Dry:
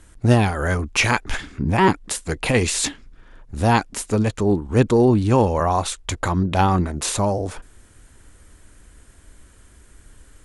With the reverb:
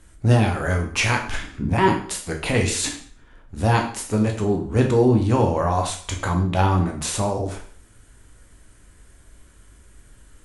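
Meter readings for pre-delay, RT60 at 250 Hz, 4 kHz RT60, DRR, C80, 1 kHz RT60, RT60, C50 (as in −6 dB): 6 ms, 0.50 s, 0.45 s, 2.0 dB, 12.0 dB, 0.50 s, 0.50 s, 8.0 dB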